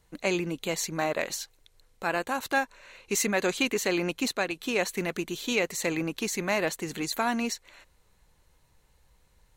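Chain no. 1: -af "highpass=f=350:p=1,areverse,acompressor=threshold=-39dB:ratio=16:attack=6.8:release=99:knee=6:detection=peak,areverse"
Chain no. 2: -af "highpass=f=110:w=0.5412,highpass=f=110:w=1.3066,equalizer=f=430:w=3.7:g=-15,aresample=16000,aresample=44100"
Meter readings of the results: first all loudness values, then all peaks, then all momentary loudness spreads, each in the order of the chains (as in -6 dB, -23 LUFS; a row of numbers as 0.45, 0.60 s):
-42.0, -30.5 LUFS; -26.0, -13.0 dBFS; 5, 6 LU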